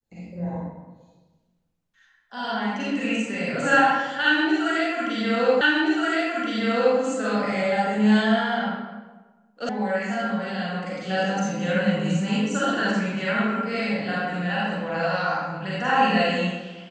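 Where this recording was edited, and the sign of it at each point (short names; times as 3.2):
5.61 repeat of the last 1.37 s
9.69 sound cut off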